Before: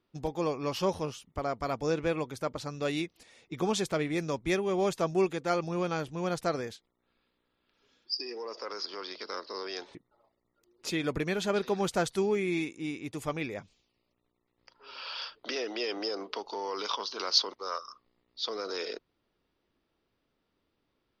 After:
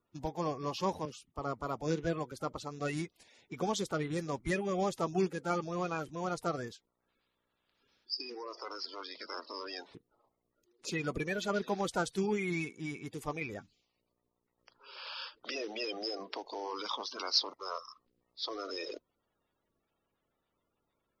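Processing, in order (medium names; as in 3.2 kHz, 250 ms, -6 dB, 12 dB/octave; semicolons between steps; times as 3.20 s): coarse spectral quantiser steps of 30 dB; 1.05–2.32 s: three bands expanded up and down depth 40%; trim -3.5 dB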